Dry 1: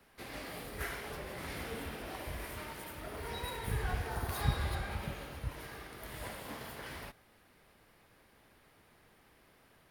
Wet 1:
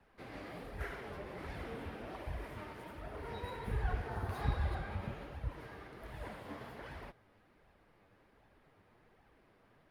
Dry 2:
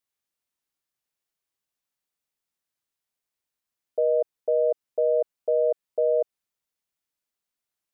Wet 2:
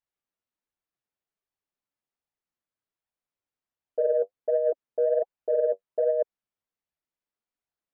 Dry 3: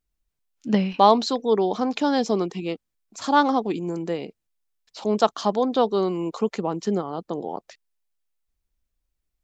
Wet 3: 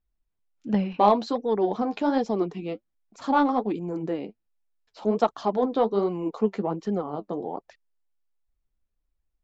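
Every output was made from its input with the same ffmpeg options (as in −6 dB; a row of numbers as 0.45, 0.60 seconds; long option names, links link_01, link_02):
-filter_complex "[0:a]lowpass=frequency=1400:poles=1,flanger=delay=1.1:depth=9.4:regen=40:speed=1.3:shape=sinusoidal,asplit=2[link_01][link_02];[link_02]asoftclip=type=tanh:threshold=-19dB,volume=-7.5dB[link_03];[link_01][link_03]amix=inputs=2:normalize=0"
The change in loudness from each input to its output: −2.5, −1.5, −2.5 LU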